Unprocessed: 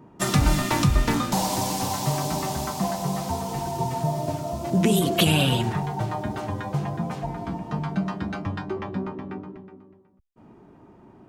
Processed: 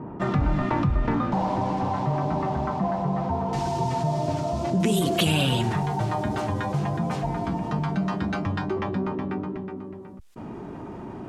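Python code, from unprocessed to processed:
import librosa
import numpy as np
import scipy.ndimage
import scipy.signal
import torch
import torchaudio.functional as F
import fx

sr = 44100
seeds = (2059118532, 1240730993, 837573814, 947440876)

y = fx.lowpass(x, sr, hz=fx.steps((0.0, 1500.0), (3.53, 6000.0), (4.8, 11000.0)), slope=12)
y = fx.env_flatten(y, sr, amount_pct=50)
y = y * librosa.db_to_amplitude(-4.0)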